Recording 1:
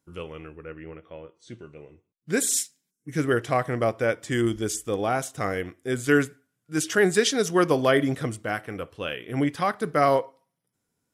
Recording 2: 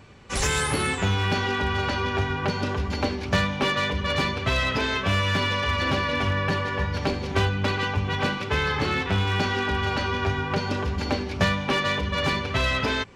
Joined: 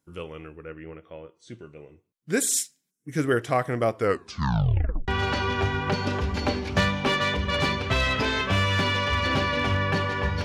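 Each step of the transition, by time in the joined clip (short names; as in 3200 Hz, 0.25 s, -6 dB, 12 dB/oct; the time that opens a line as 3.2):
recording 1
3.94 tape stop 1.14 s
5.08 switch to recording 2 from 1.64 s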